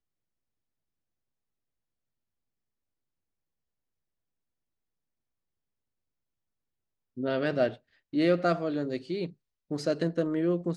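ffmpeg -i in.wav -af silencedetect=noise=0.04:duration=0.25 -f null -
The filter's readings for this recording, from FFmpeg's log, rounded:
silence_start: 0.00
silence_end: 7.19 | silence_duration: 7.19
silence_start: 7.68
silence_end: 8.14 | silence_duration: 0.46
silence_start: 9.25
silence_end: 9.71 | silence_duration: 0.46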